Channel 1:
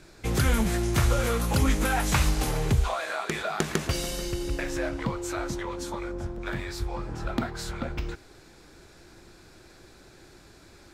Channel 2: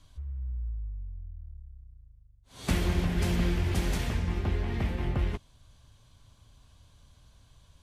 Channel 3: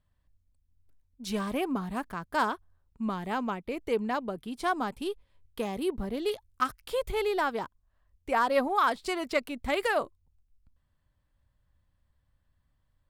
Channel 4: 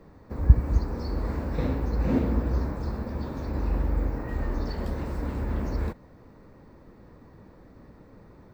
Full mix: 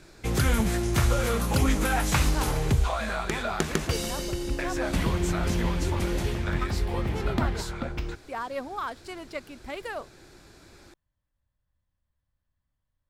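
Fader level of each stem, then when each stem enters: 0.0, −0.5, −8.0, −14.5 decibels; 0.00, 2.25, 0.00, 0.10 seconds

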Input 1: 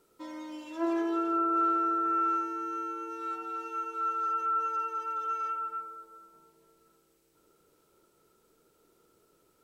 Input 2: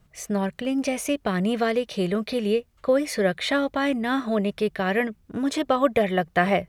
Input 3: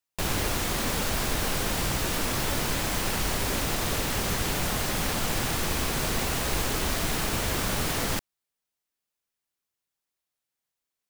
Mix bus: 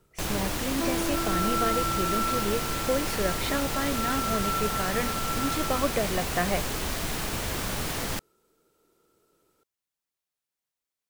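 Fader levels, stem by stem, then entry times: −1.5, −7.0, −3.0 decibels; 0.00, 0.00, 0.00 seconds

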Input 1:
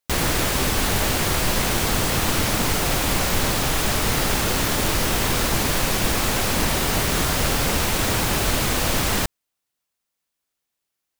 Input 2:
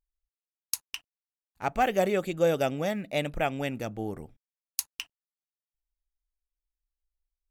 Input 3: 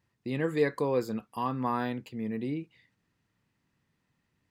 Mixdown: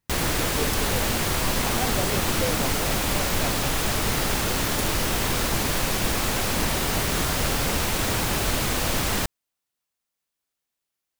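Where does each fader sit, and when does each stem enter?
−3.0, −6.5, −6.5 decibels; 0.00, 0.00, 0.00 seconds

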